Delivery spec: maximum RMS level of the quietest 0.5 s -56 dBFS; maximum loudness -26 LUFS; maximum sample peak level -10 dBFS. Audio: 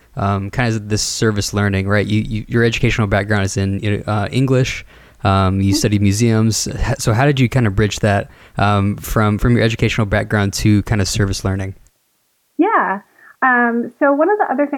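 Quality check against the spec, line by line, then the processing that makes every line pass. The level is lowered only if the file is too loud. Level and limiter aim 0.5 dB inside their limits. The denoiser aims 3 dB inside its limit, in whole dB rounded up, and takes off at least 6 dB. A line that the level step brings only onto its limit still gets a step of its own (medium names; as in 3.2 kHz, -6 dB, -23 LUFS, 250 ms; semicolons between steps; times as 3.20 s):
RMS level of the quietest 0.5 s -63 dBFS: pass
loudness -16.5 LUFS: fail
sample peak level -3.5 dBFS: fail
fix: trim -10 dB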